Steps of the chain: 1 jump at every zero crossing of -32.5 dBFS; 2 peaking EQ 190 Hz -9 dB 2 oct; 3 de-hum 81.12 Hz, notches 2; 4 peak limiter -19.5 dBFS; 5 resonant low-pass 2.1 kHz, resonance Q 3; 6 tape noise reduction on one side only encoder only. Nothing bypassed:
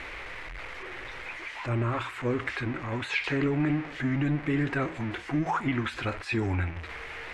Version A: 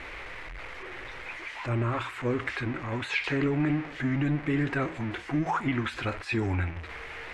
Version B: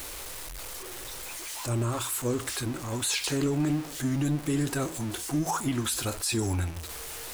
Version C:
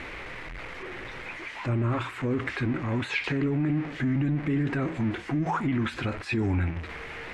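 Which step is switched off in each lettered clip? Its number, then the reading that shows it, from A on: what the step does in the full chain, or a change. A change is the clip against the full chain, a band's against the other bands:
6, momentary loudness spread change +1 LU; 5, 2 kHz band -6.5 dB; 2, 125 Hz band +3.0 dB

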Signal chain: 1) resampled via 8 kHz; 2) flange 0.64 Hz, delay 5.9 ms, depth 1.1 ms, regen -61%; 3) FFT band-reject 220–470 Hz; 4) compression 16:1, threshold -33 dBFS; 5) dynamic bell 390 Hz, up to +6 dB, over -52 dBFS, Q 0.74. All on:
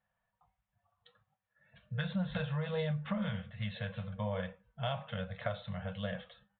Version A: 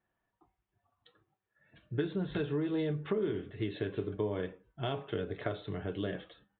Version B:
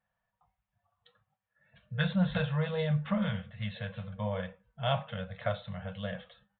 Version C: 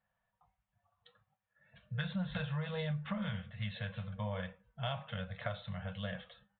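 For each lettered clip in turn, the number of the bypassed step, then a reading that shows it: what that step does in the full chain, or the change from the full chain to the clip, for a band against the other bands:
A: 3, 500 Hz band +7.0 dB; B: 4, mean gain reduction 2.0 dB; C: 5, loudness change -2.0 LU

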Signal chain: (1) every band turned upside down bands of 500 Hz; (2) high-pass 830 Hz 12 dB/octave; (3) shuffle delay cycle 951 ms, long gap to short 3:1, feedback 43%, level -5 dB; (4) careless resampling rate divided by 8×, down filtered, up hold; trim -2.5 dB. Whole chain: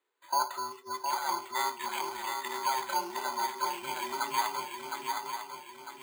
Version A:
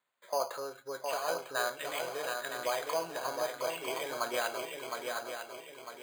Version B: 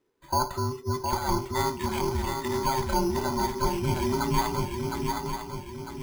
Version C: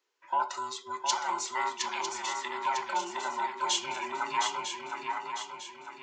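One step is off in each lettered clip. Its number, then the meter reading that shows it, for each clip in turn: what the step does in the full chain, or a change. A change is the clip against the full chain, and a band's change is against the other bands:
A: 1, 500 Hz band +10.5 dB; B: 2, 250 Hz band +15.5 dB; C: 4, 8 kHz band +3.5 dB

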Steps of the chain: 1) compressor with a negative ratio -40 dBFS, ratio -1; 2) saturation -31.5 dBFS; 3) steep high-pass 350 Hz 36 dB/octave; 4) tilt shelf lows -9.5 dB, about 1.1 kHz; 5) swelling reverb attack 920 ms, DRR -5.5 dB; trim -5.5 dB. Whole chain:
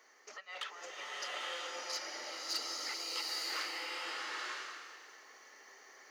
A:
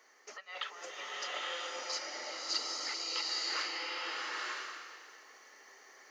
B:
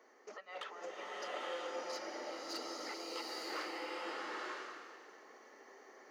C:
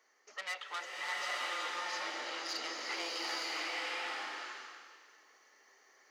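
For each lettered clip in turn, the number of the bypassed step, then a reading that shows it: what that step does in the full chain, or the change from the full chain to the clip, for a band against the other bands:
2, distortion -14 dB; 4, 250 Hz band +12.0 dB; 1, crest factor change -2.0 dB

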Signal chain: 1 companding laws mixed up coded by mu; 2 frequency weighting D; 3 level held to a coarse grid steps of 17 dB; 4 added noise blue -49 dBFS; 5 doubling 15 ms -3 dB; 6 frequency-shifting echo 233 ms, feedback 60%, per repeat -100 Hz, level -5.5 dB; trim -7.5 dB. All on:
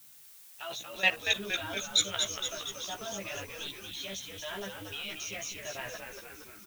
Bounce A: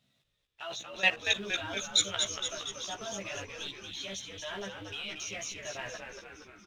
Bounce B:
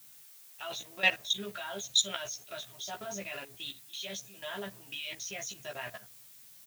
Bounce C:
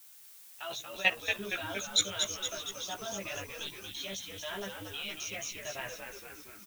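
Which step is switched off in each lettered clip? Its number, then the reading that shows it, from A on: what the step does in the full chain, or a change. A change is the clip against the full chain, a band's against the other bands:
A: 4, momentary loudness spread change -2 LU; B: 6, echo-to-direct -3.5 dB to none; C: 1, distortion -22 dB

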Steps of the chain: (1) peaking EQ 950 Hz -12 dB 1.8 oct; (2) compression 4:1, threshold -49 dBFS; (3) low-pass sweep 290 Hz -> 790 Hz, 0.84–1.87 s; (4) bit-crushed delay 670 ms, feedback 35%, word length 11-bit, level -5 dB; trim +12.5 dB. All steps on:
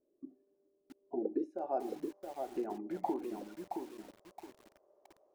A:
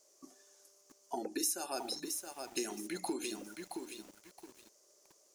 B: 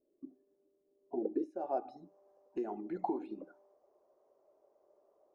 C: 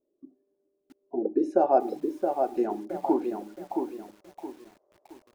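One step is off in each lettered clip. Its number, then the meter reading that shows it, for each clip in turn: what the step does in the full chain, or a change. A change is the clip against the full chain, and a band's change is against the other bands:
3, 8 kHz band +27.0 dB; 4, 2 kHz band -3.0 dB; 2, mean gain reduction 9.0 dB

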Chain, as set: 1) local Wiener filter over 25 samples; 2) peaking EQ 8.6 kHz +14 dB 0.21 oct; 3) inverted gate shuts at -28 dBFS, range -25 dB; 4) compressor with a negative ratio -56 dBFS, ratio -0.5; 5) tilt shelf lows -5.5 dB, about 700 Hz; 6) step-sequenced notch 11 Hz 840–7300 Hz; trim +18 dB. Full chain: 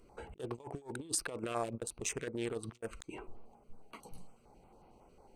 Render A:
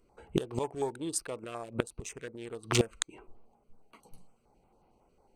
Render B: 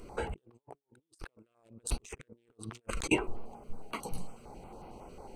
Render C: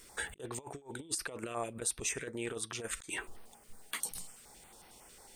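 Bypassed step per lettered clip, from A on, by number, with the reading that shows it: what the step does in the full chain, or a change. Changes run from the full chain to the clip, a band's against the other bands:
4, crest factor change +6.0 dB; 3, momentary loudness spread change +6 LU; 1, 2 kHz band +7.0 dB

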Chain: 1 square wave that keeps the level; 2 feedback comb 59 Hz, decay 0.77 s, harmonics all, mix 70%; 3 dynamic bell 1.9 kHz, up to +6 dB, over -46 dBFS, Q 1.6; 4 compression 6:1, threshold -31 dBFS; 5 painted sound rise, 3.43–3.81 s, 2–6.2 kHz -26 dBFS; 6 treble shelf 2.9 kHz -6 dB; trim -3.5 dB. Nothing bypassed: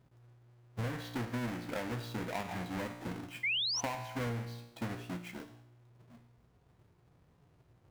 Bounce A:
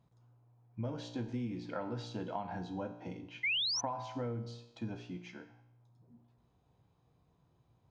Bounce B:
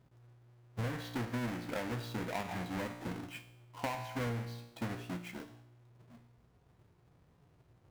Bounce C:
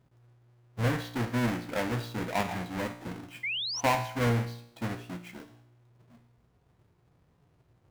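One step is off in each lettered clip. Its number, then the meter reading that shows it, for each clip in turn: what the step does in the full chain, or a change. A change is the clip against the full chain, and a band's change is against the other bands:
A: 1, distortion -5 dB; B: 5, 4 kHz band -11.0 dB; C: 4, mean gain reduction 3.5 dB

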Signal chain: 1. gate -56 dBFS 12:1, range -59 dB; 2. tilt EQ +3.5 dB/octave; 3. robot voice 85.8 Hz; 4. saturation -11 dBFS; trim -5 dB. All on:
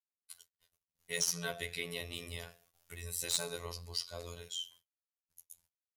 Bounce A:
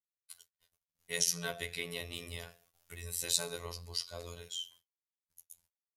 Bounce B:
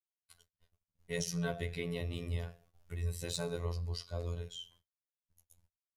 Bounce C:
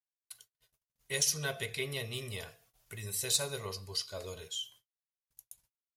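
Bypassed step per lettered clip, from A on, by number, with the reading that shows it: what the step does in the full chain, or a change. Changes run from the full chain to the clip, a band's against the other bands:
4, distortion -12 dB; 2, 125 Hz band +12.5 dB; 3, 125 Hz band +3.0 dB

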